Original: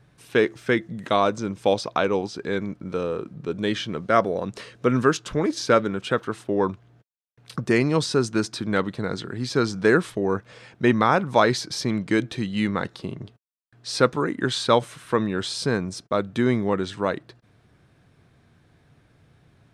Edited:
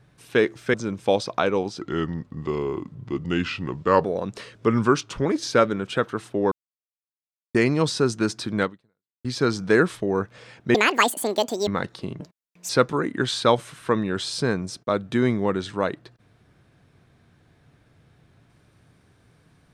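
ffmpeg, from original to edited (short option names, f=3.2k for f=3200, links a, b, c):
-filter_complex "[0:a]asplit=13[a][b][c][d][e][f][g][h][i][j][k][l][m];[a]atrim=end=0.742[n];[b]atrim=start=1.318:end=2.394[o];[c]atrim=start=2.39:end=4.24,asetpts=PTS-STARTPTS,asetrate=36603,aresample=44100,atrim=end_sample=98295,asetpts=PTS-STARTPTS[p];[d]atrim=start=4.236:end=4.754[q];[e]atrim=start=4.75:end=5.4,asetpts=PTS-STARTPTS,asetrate=40572,aresample=44100[r];[f]atrim=start=5.396:end=6.66,asetpts=PTS-STARTPTS,afade=t=out:st=1.26:d=0.004:c=hsin[s];[g]atrim=start=6.66:end=7.69,asetpts=PTS-STARTPTS,volume=0[t];[h]atrim=start=7.69:end=9.39,asetpts=PTS-STARTPTS,afade=t=in:d=0.004:c=hsin,afade=t=out:st=1.09:d=0.61:c=exp[u];[i]atrim=start=9.39:end=10.894,asetpts=PTS-STARTPTS,afade=t=in:d=0.004:c=hsin[v];[j]atrim=start=10.89:end=12.68,asetpts=PTS-STARTPTS,asetrate=85113,aresample=44100,atrim=end_sample=40901,asetpts=PTS-STARTPTS[w];[k]atrim=start=12.676:end=13.214[x];[l]atrim=start=13.21:end=13.93,asetpts=PTS-STARTPTS,asetrate=64827,aresample=44100[y];[m]atrim=start=13.926[z];[n][o]acrossfade=d=0.004:c1=hsin:c2=hsin[aa];[aa][p]acrossfade=d=0.004:c1=hsin:c2=hsin[ab];[ab][q]acrossfade=d=0.004:c1=hsin:c2=hsin[ac];[ac][r]acrossfade=d=0.004:c1=hsin:c2=hsin[ad];[s][t][u][v]concat=n=4:v=0:a=1[ae];[ad][ae]acrossfade=d=0.004:c1=hsin:c2=hsin[af];[af][w]acrossfade=d=0.004:c1=hsin:c2=hsin[ag];[ag][x]acrossfade=d=0.004:c1=hsin:c2=hsin[ah];[ah][y]acrossfade=d=0.004:c1=hsin:c2=hsin[ai];[ai][z]acrossfade=d=0.004:c1=hsin:c2=hsin"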